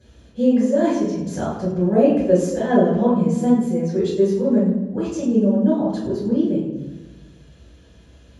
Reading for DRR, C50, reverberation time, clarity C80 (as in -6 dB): -12.0 dB, 3.0 dB, 1.2 s, 5.0 dB